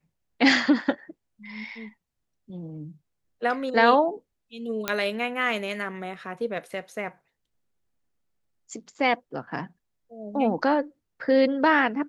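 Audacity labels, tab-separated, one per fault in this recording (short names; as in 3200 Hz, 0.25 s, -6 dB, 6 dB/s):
4.880000	4.880000	pop -9 dBFS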